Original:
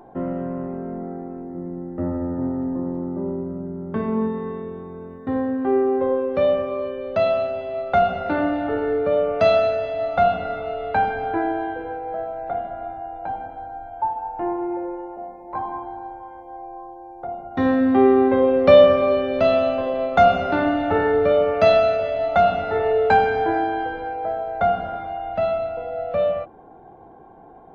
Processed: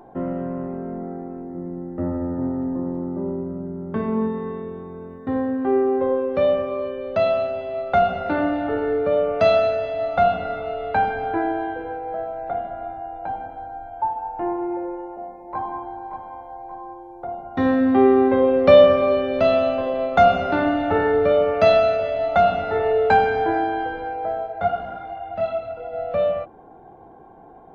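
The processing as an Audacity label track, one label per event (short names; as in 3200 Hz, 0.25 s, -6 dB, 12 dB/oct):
15.470000	16.220000	echo throw 0.58 s, feedback 45%, level -8 dB
24.460000	25.920000	detuned doubles each way 32 cents -> 15 cents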